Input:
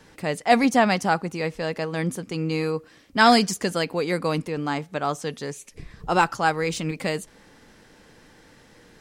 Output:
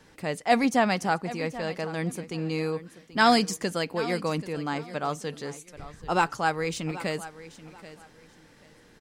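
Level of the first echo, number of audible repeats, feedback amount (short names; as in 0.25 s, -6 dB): -16.0 dB, 2, 24%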